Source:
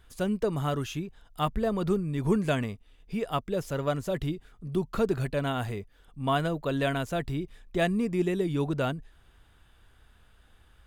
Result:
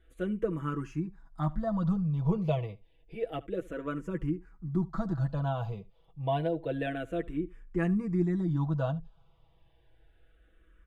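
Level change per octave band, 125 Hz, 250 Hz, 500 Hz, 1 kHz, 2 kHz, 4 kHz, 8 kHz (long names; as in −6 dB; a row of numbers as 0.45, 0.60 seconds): +0.5 dB, −1.5 dB, −5.0 dB, −5.5 dB, −7.5 dB, −12.0 dB, below −15 dB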